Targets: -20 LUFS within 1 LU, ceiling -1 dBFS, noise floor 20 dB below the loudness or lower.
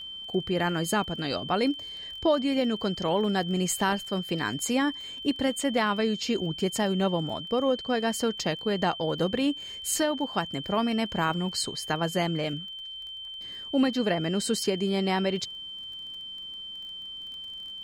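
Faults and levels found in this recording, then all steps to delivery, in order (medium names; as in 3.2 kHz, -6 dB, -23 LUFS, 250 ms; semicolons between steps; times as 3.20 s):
tick rate 21 per s; steady tone 3.1 kHz; tone level -37 dBFS; loudness -28.5 LUFS; peak level -13.0 dBFS; loudness target -20.0 LUFS
-> de-click; band-stop 3.1 kHz, Q 30; trim +8.5 dB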